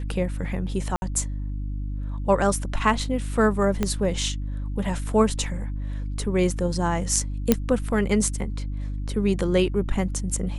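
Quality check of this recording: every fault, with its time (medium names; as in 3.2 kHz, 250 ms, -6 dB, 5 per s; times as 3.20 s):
hum 50 Hz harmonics 6 -29 dBFS
0.96–1.02 s: dropout 60 ms
3.83 s: pop -10 dBFS
7.52 s: pop -3 dBFS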